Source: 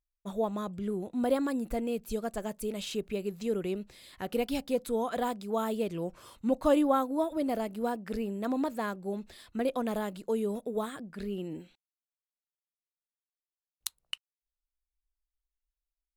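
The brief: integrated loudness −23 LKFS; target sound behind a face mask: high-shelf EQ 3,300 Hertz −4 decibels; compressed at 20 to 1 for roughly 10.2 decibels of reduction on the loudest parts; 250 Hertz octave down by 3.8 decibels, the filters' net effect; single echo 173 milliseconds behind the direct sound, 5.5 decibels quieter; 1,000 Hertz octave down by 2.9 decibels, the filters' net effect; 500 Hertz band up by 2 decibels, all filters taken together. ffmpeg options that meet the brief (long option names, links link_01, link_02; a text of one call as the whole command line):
ffmpeg -i in.wav -af "equalizer=frequency=250:width_type=o:gain=-5.5,equalizer=frequency=500:width_type=o:gain=5,equalizer=frequency=1000:width_type=o:gain=-5.5,acompressor=threshold=-29dB:ratio=20,highshelf=frequency=3300:gain=-4,aecho=1:1:173:0.531,volume=12.5dB" out.wav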